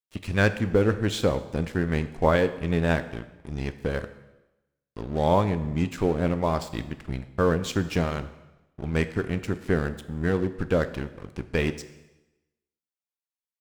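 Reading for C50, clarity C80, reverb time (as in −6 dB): 13.5 dB, 15.5 dB, 1.0 s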